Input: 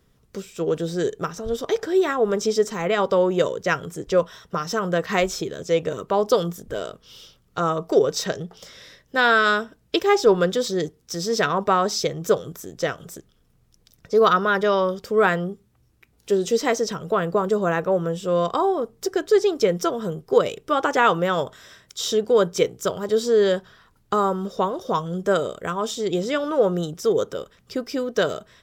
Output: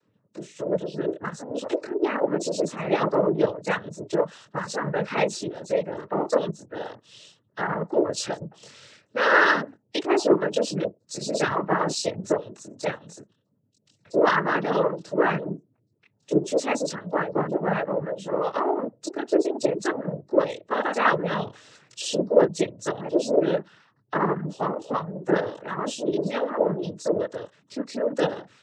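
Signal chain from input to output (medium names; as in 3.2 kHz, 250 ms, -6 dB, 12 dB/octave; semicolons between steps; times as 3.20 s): spectral gate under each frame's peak -25 dB strong; chorus voices 4, 1.2 Hz, delay 23 ms, depth 3 ms; noise-vocoded speech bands 12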